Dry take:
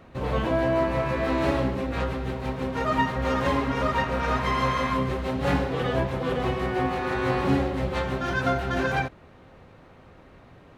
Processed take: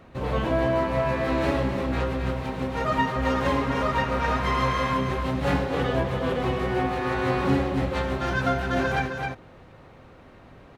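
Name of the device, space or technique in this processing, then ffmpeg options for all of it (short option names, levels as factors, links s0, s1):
ducked delay: -filter_complex "[0:a]asplit=3[s0][s1][s2];[s1]adelay=263,volume=0.668[s3];[s2]apad=whole_len=486878[s4];[s3][s4]sidechaincompress=threshold=0.0447:ratio=8:attack=50:release=526[s5];[s0][s5]amix=inputs=2:normalize=0"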